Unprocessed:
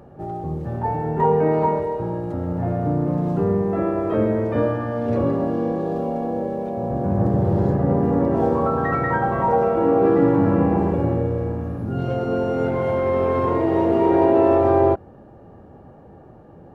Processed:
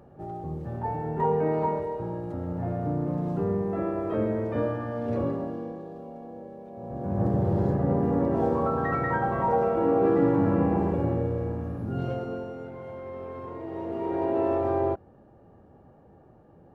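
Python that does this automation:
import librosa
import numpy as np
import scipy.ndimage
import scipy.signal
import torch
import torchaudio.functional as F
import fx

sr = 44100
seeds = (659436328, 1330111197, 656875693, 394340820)

y = fx.gain(x, sr, db=fx.line((5.23, -7.0), (5.93, -17.0), (6.67, -17.0), (7.24, -5.5), (12.05, -5.5), (12.65, -18.0), (13.55, -18.0), (14.41, -9.5)))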